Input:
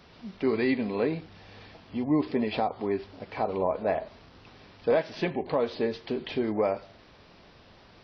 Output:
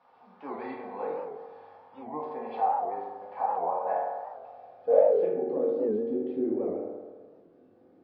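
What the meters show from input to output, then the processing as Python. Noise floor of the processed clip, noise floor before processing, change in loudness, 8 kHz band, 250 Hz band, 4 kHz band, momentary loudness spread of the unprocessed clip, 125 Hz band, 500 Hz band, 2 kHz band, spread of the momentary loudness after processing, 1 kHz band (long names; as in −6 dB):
−59 dBFS, −55 dBFS, 0.0 dB, can't be measured, −6.0 dB, below −20 dB, 12 LU, below −10 dB, +1.0 dB, −12.5 dB, 20 LU, +4.0 dB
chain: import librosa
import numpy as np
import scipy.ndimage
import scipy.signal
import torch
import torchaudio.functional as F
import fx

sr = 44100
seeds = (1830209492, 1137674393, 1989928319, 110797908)

y = fx.rev_fdn(x, sr, rt60_s=1.5, lf_ratio=0.8, hf_ratio=0.35, size_ms=12.0, drr_db=-6.5)
y = fx.filter_sweep_bandpass(y, sr, from_hz=900.0, to_hz=320.0, start_s=4.4, end_s=5.77, q=4.5)
y = fx.record_warp(y, sr, rpm=78.0, depth_cents=160.0)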